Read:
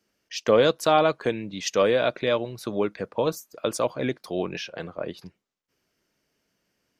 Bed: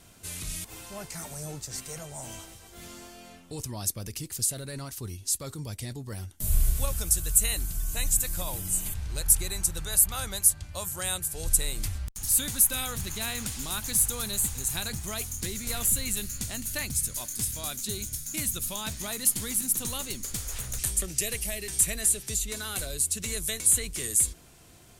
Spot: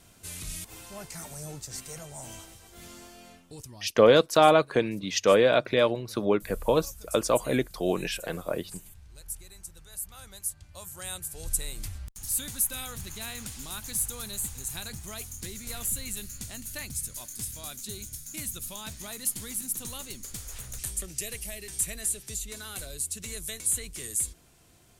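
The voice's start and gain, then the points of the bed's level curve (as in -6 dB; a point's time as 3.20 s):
3.50 s, +1.0 dB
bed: 3.30 s -2 dB
4.07 s -17 dB
9.87 s -17 dB
11.24 s -5.5 dB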